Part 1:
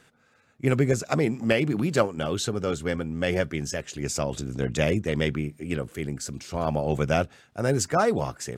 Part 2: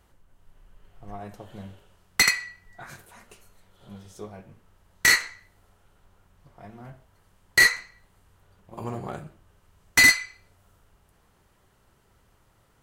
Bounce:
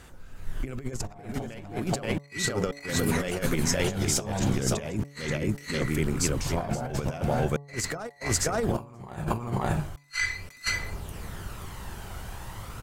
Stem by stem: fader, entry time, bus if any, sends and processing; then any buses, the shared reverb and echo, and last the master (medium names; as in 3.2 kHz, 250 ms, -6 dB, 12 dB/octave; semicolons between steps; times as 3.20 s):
-4.0 dB, 0.00 s, no send, echo send -5 dB, treble shelf 8.5 kHz +7 dB
-2.0 dB, 0.00 s, no send, echo send -7 dB, level rider gain up to 15 dB; phaser 0.37 Hz, delay 1.4 ms, feedback 44%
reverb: none
echo: delay 529 ms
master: compressor with a negative ratio -31 dBFS, ratio -0.5; de-hum 142.3 Hz, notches 8